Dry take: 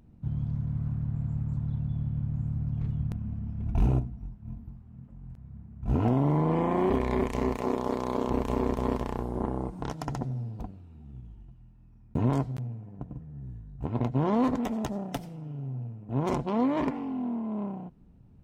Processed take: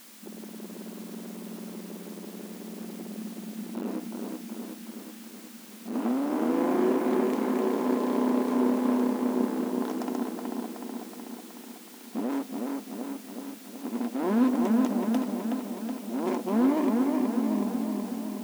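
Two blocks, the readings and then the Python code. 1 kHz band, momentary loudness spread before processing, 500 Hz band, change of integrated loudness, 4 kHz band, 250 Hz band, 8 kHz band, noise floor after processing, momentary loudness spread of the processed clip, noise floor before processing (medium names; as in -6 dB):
-0.5 dB, 18 LU, +1.5 dB, +1.5 dB, +4.5 dB, +4.5 dB, no reading, -46 dBFS, 16 LU, -54 dBFS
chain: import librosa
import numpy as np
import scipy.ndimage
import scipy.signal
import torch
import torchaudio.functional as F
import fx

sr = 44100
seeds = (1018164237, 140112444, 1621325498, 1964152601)

p1 = fx.low_shelf(x, sr, hz=280.0, db=11.5)
p2 = fx.dmg_noise_colour(p1, sr, seeds[0], colour='white', level_db=-48.0)
p3 = np.clip(p2, -10.0 ** (-15.5 / 20.0), 10.0 ** (-15.5 / 20.0))
p4 = fx.brickwall_highpass(p3, sr, low_hz=200.0)
p5 = p4 + fx.echo_wet_lowpass(p4, sr, ms=372, feedback_pct=63, hz=3300.0, wet_db=-3.0, dry=0)
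y = F.gain(torch.from_numpy(p5), -2.5).numpy()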